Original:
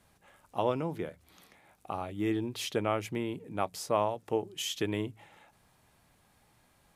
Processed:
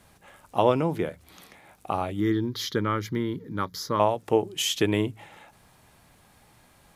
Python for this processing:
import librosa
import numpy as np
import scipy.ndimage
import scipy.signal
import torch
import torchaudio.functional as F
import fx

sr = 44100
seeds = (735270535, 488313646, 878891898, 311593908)

y = fx.fixed_phaser(x, sr, hz=2600.0, stages=6, at=(2.2, 4.0))
y = F.gain(torch.from_numpy(y), 8.5).numpy()